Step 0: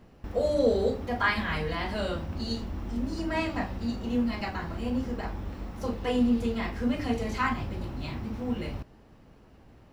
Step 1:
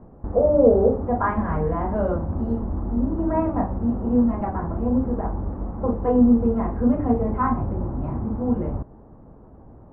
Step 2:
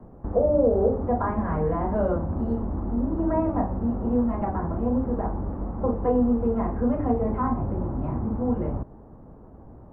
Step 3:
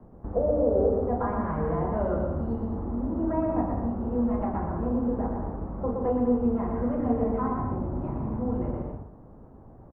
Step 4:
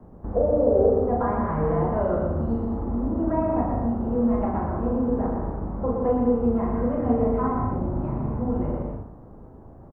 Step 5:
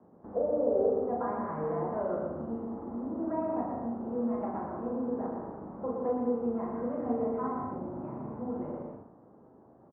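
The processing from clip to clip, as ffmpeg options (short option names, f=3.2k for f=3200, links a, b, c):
-af "lowpass=f=1.1k:w=0.5412,lowpass=f=1.1k:w=1.3066,volume=8.5dB"
-filter_complex "[0:a]acrossover=split=120|370|810[a][b][c][d];[a]acompressor=threshold=-28dB:ratio=4[e];[b]acompressor=threshold=-26dB:ratio=4[f];[c]acompressor=threshold=-22dB:ratio=4[g];[d]acompressor=threshold=-34dB:ratio=4[h];[e][f][g][h]amix=inputs=4:normalize=0"
-af "aecho=1:1:120|198|248.7|281.7|303.1:0.631|0.398|0.251|0.158|0.1,volume=-4.5dB"
-filter_complex "[0:a]asplit=2[a][b];[b]adelay=39,volume=-5.5dB[c];[a][c]amix=inputs=2:normalize=0,volume=2.5dB"
-af "highpass=210,lowpass=2k,volume=-7.5dB"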